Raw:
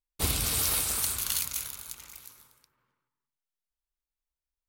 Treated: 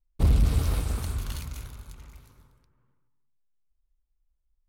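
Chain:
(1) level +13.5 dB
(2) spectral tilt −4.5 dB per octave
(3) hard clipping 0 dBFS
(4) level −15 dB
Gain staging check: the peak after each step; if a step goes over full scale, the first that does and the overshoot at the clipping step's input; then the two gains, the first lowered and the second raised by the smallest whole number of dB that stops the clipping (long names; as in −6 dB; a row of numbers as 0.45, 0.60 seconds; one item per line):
−1.5, +10.0, 0.0, −15.0 dBFS
step 2, 10.0 dB
step 1 +3.5 dB, step 4 −5 dB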